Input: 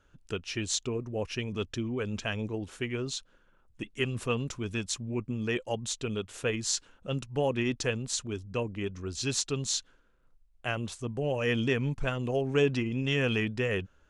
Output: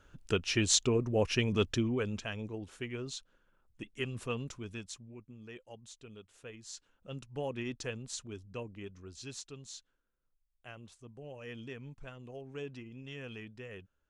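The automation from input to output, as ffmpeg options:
-af "volume=4.47,afade=t=out:st=1.67:d=0.58:silence=0.298538,afade=t=out:st=4.43:d=0.75:silence=0.266073,afade=t=in:st=6.66:d=0.66:silence=0.354813,afade=t=out:st=8.4:d=1.22:silence=0.398107"

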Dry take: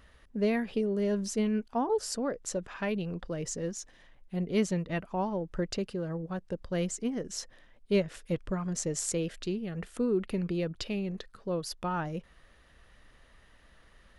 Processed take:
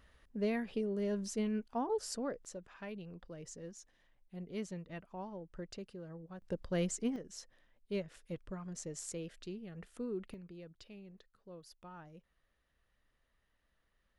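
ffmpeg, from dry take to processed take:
-af "asetnsamples=n=441:p=0,asendcmd='2.45 volume volume -13.5dB;6.42 volume volume -3dB;7.16 volume volume -11.5dB;10.34 volume volume -19.5dB',volume=0.473"

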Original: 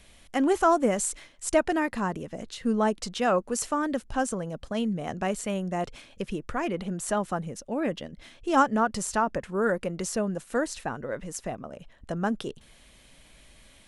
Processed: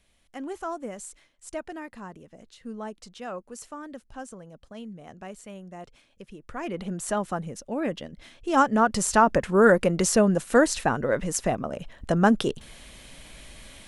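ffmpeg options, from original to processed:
-af "volume=2.66,afade=t=in:st=6.38:d=0.49:silence=0.251189,afade=t=in:st=8.53:d=0.92:silence=0.375837"

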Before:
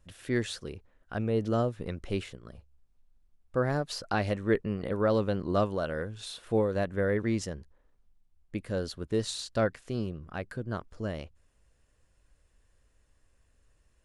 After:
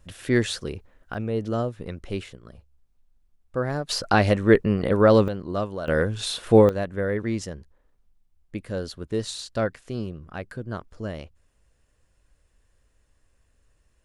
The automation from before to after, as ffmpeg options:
-af "asetnsamples=n=441:p=0,asendcmd='1.14 volume volume 1.5dB;3.89 volume volume 10dB;5.28 volume volume -0.5dB;5.88 volume volume 12dB;6.69 volume volume 2dB',volume=2.51"

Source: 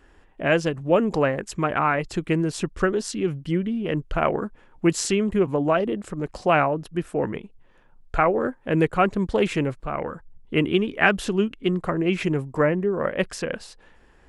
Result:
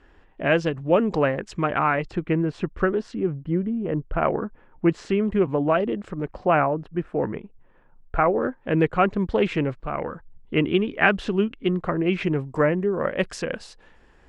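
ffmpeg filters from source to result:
-af "asetnsamples=n=441:p=0,asendcmd='2.11 lowpass f 2200;3.15 lowpass f 1200;4.14 lowpass f 2000;5.25 lowpass f 3500;6.26 lowpass f 1900;8.43 lowpass f 3700;12.46 lowpass f 8000',lowpass=4600"

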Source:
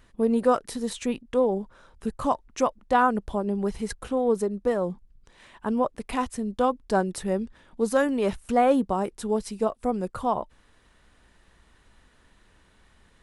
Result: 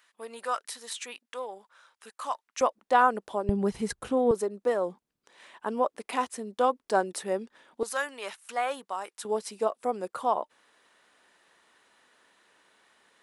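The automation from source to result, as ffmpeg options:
-af "asetnsamples=n=441:p=0,asendcmd='2.61 highpass f 410;3.49 highpass f 97;4.31 highpass f 390;7.83 highpass f 1100;9.25 highpass f 430',highpass=1200"

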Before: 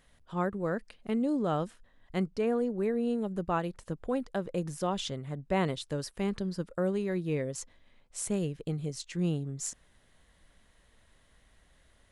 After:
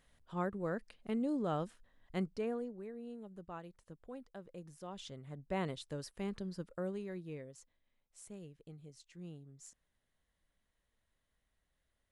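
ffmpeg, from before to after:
-af "volume=1.33,afade=t=out:st=2.26:d=0.57:silence=0.281838,afade=t=in:st=4.83:d=0.68:silence=0.375837,afade=t=out:st=6.69:d=0.92:silence=0.298538"

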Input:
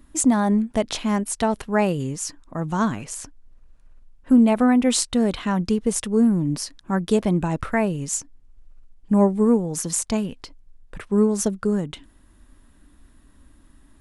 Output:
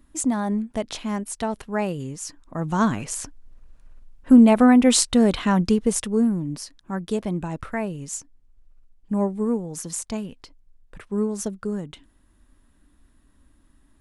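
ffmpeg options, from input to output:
-af "volume=1.41,afade=t=in:st=2.21:d=0.86:silence=0.398107,afade=t=out:st=5.58:d=0.89:silence=0.354813"

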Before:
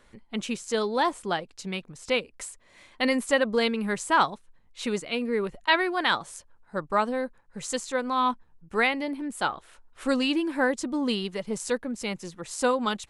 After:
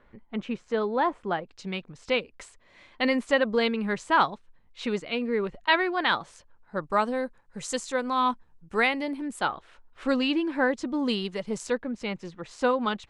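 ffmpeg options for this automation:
-af "asetnsamples=n=441:p=0,asendcmd='1.47 lowpass f 4400;6.84 lowpass f 9600;9.39 lowpass f 4300;10.99 lowpass f 7100;11.67 lowpass f 3500',lowpass=2000"

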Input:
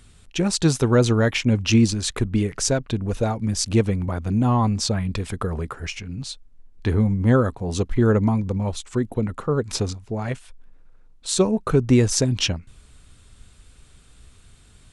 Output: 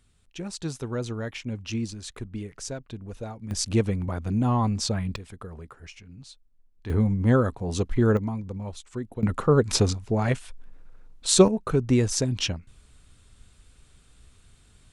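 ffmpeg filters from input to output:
-af "asetnsamples=n=441:p=0,asendcmd='3.51 volume volume -4dB;5.16 volume volume -14dB;6.9 volume volume -3dB;8.17 volume volume -10dB;9.23 volume volume 3dB;11.48 volume volume -5dB',volume=0.211"

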